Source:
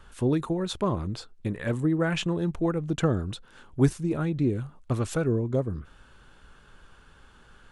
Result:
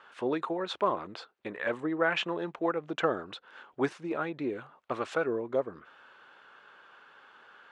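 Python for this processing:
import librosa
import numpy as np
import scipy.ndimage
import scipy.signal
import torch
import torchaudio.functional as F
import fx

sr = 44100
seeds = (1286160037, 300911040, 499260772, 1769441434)

y = fx.bandpass_edges(x, sr, low_hz=570.0, high_hz=2800.0)
y = y * librosa.db_to_amplitude(4.0)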